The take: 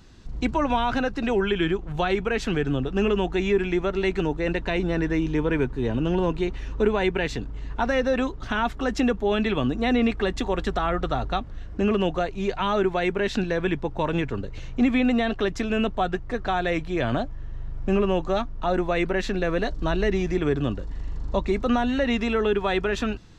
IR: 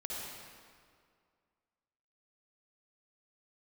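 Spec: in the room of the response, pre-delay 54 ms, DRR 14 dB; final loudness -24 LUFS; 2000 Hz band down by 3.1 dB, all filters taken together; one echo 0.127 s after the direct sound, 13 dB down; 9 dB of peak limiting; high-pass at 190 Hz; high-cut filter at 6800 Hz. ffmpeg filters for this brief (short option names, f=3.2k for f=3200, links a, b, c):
-filter_complex "[0:a]highpass=190,lowpass=6.8k,equalizer=f=2k:t=o:g=-4,alimiter=limit=-20.5dB:level=0:latency=1,aecho=1:1:127:0.224,asplit=2[a][b];[1:a]atrim=start_sample=2205,adelay=54[c];[b][c]afir=irnorm=-1:irlink=0,volume=-15.5dB[d];[a][d]amix=inputs=2:normalize=0,volume=5.5dB"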